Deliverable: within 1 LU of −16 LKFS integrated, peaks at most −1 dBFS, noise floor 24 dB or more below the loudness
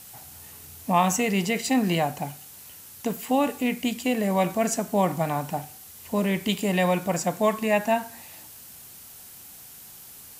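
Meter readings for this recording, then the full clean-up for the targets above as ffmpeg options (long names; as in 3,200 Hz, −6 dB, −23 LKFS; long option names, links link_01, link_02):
background noise floor −46 dBFS; target noise floor −49 dBFS; integrated loudness −25.0 LKFS; sample peak −7.5 dBFS; target loudness −16.0 LKFS
→ -af "afftdn=noise_reduction=6:noise_floor=-46"
-af "volume=9dB,alimiter=limit=-1dB:level=0:latency=1"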